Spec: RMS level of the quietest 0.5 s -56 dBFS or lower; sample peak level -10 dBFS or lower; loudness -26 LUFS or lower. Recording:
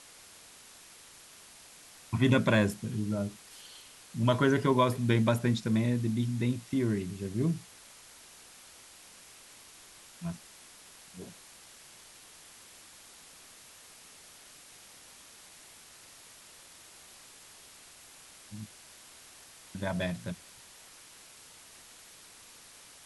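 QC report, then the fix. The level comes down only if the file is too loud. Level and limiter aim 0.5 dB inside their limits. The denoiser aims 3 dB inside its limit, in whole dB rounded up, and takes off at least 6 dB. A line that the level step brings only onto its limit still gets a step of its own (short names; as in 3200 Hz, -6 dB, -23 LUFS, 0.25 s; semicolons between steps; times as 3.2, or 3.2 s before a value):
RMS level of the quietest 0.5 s -54 dBFS: fail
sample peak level -11.5 dBFS: OK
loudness -30.0 LUFS: OK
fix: denoiser 6 dB, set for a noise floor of -54 dBFS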